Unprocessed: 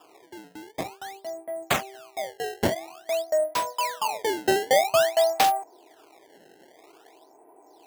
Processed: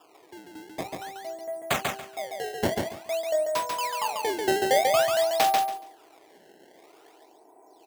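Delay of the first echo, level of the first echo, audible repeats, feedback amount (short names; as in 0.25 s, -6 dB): 0.141 s, -3.5 dB, 3, 20%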